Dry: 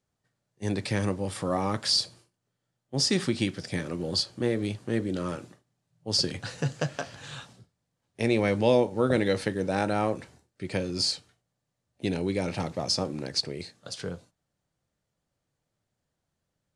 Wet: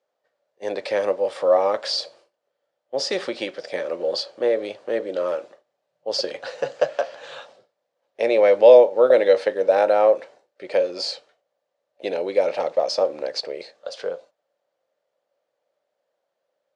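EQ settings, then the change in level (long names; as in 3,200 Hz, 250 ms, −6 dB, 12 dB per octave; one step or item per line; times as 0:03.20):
high-pass with resonance 550 Hz, resonance Q 4.9
low-pass filter 4,500 Hz 12 dB per octave
+2.5 dB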